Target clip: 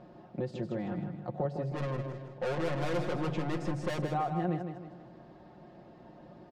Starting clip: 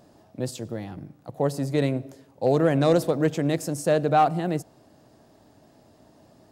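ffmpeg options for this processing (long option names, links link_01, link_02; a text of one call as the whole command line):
ffmpeg -i in.wav -filter_complex "[0:a]lowpass=3000,aemphasis=mode=reproduction:type=cd,asettb=1/sr,asplit=3[link_01][link_02][link_03];[link_01]atrim=end=1.704[link_04];[link_02]atrim=start=1.7:end=3.99,asetpts=PTS-STARTPTS,afade=type=in:duration=0.004:curve=qsin,afade=type=out:start_time=2.286:duration=0.004:curve=qsin,aeval=exprs='(tanh(35.5*val(0)+0.15)-tanh(0.15))/35.5':channel_layout=same[link_05];[link_03]atrim=start=3.986[link_06];[link_04][link_05]acrossfade=duration=0.004:curve1=hsin:curve2=qsin[link_07];[link_07][link_06]acrossfade=duration=0.004:curve1=qsin:curve2=hsin,acompressor=threshold=-34dB:ratio=4,aecho=1:1:5.6:0.67,aecho=1:1:158|316|474|632|790:0.422|0.181|0.078|0.0335|0.0144,volume=1dB" out.wav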